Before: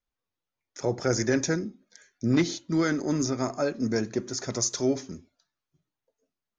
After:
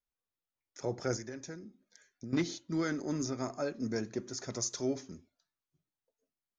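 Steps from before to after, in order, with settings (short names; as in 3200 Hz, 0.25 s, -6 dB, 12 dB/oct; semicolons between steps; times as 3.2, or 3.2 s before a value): 1.16–2.33 compressor 3:1, threshold -36 dBFS, peak gain reduction 12.5 dB; gain -8 dB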